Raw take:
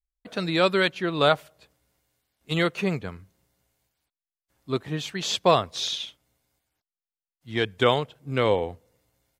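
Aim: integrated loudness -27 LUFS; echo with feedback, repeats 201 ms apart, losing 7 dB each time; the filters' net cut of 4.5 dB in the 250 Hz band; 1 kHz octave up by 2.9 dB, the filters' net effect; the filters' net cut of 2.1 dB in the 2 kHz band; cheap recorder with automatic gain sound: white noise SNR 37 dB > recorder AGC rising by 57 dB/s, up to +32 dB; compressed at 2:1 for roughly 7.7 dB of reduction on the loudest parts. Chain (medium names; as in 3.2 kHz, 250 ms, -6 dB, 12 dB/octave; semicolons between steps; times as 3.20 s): peaking EQ 250 Hz -8 dB; peaking EQ 1 kHz +5.5 dB; peaking EQ 2 kHz -5 dB; compression 2:1, threshold -27 dBFS; feedback delay 201 ms, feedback 45%, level -7 dB; white noise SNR 37 dB; recorder AGC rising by 57 dB/s, up to +32 dB; trim +0.5 dB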